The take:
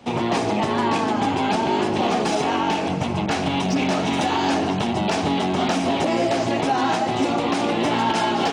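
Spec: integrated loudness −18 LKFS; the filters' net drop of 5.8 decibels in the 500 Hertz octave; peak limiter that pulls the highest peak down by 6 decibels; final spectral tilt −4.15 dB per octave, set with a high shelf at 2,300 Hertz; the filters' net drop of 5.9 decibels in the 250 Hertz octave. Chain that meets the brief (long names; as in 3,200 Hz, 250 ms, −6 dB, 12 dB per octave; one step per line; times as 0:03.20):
parametric band 250 Hz −5.5 dB
parametric band 500 Hz −6 dB
high-shelf EQ 2,300 Hz −8 dB
level +11 dB
brickwall limiter −9.5 dBFS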